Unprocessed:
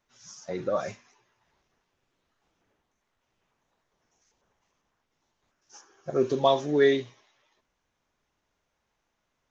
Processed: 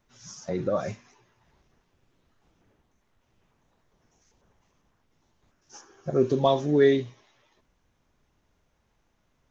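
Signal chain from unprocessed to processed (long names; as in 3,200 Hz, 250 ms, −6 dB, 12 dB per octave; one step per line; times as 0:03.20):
low-shelf EQ 320 Hz +11 dB
in parallel at 0 dB: downward compressor, threshold −36 dBFS, peak gain reduction 21.5 dB
on the sum: level −3.5 dB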